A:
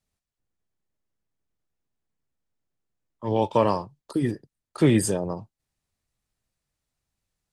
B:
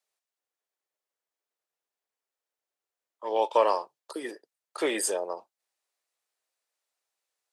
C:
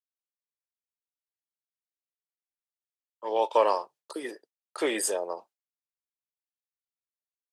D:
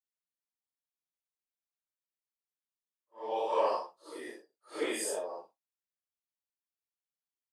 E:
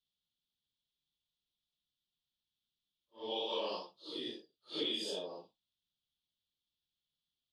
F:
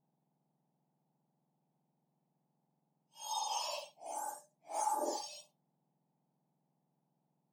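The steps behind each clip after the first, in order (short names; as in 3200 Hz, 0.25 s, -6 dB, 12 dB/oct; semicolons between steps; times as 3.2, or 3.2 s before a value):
HPF 450 Hz 24 dB/oct
expander -50 dBFS; vibrato 2.4 Hz 26 cents
phase scrambler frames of 0.2 s; gain -6 dB
EQ curve 170 Hz 0 dB, 640 Hz -19 dB, 2000 Hz -22 dB, 3400 Hz +6 dB, 8500 Hz -26 dB; compressor 6:1, threshold -45 dBFS, peak gain reduction 8 dB; gain +11.5 dB
spectrum mirrored in octaves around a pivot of 1700 Hz; gain +2.5 dB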